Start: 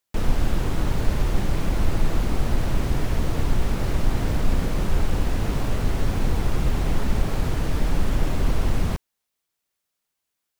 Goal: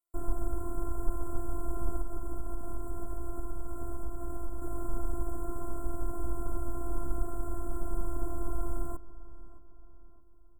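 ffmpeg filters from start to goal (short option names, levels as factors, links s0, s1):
-filter_complex "[0:a]asettb=1/sr,asplit=3[s0][s1][s2];[s0]atrim=end=2.014[s3];[s1]atrim=start=2.01:end=4.62,asetpts=PTS-STARTPTS,afade=t=in:d=0.004:c=qsin,afade=t=out:st=2.606:d=0.004:c=qsin,acompressor=threshold=0.112:ratio=6[s4];[s2]atrim=start=4.616[s5];[s3][s4]acrossfade=d=0.004:c1=hsin:c2=qsin[s6];[s6][s5]acrossfade=d=0.004:c1=qsin:c2=hsin,afftfilt=real='hypot(re,im)*cos(PI*b)':imag='0':win_size=512:overlap=0.75,asuperstop=centerf=3400:order=20:qfactor=0.58,asplit=2[s7][s8];[s8]adelay=619,lowpass=f=2400:p=1,volume=0.15,asplit=2[s9][s10];[s10]adelay=619,lowpass=f=2400:p=1,volume=0.47,asplit=2[s11][s12];[s12]adelay=619,lowpass=f=2400:p=1,volume=0.47,asplit=2[s13][s14];[s14]adelay=619,lowpass=f=2400:p=1,volume=0.47[s15];[s7][s9][s11][s13][s15]amix=inputs=5:normalize=0,volume=0.501"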